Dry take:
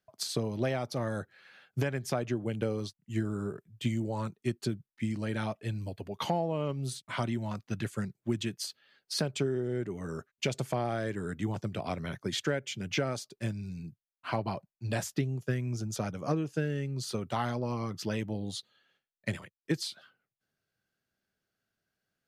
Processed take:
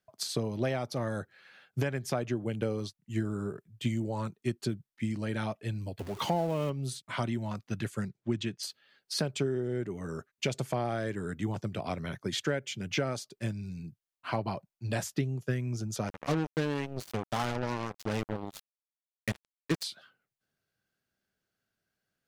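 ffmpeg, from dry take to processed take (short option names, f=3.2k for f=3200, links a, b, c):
-filter_complex "[0:a]asettb=1/sr,asplit=3[a][b][c];[a]atrim=end=5.994[d];[b]atrim=start=5.99:end=6.7,asetpts=PTS-STARTPTS,afade=t=in:d=0.004:c=qsin,afade=t=out:st=0.706:d=0.004:c=qsin,aeval=exprs='val(0)+0.5*0.00944*sgn(val(0))':c=same[e];[c]atrim=start=6.696[f];[d][e]acrossfade=d=0.004:c1=hsin:c2=qsin[g];[g][f]acrossfade=d=0.004:c1=qsin:c2=hsin,asettb=1/sr,asplit=3[h][i][j];[h]atrim=end=8.094[k];[i]atrim=start=8.09:end=8.63,asetpts=PTS-STARTPTS,afade=t=in:d=0.004:c=qsin,afade=t=out:st=0.536:d=0.004:c=qsin,lowpass=5.9k[l];[j]atrim=start=8.626[m];[k][l]acrossfade=d=0.004:c1=hsin:c2=qsin[n];[n][m]acrossfade=d=0.004:c1=qsin:c2=hsin,asplit=3[o][p][q];[o]afade=t=out:st=16.07:d=0.02[r];[p]acrusher=bits=4:mix=0:aa=0.5,afade=t=in:st=16.07:d=0.02,afade=t=out:st=19.82:d=0.02[s];[q]afade=t=in:st=19.82:d=0.02[t];[r][s][t]amix=inputs=3:normalize=0"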